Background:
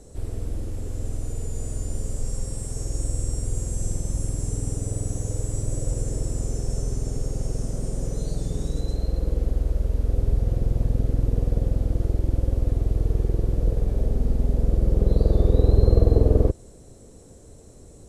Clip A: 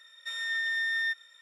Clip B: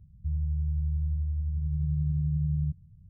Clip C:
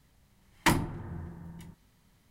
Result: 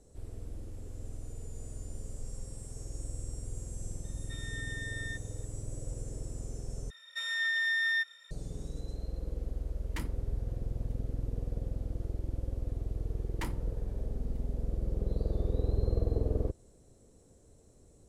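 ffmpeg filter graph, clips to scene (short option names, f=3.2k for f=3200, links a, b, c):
-filter_complex "[1:a]asplit=2[a][b];[3:a]asplit=2[c][d];[0:a]volume=-13dB[e];[c]equalizer=f=790:t=o:w=0.81:g=-7.5[f];[e]asplit=2[g][h];[g]atrim=end=6.904[i];[b]atrim=end=1.41[j];[h]atrim=start=8.306[k];[a]atrim=end=1.41,asetpts=PTS-STARTPTS,volume=-12dB,afade=t=in:d=0.004:c=hsin,afade=t=out:st=1.406:d=0.004:c=hsin,adelay=4040[l];[f]atrim=end=2.3,asetpts=PTS-STARTPTS,volume=-16.5dB,afade=t=in:d=0.004:c=hsin,afade=t=out:st=2.296:d=0.004:c=hsin,adelay=410130S[m];[d]atrim=end=2.3,asetpts=PTS-STARTPTS,volume=-16dB,afade=t=in:d=0.004:c=hsin,afade=t=out:st=2.296:d=0.004:c=hsin,adelay=12750[n];[i][j]acrossfade=d=0.004:c1=hsin:c2=hsin[o];[o][k]acrossfade=d=0.004:c1=hsin:c2=hsin[p];[p][l][m][n]amix=inputs=4:normalize=0"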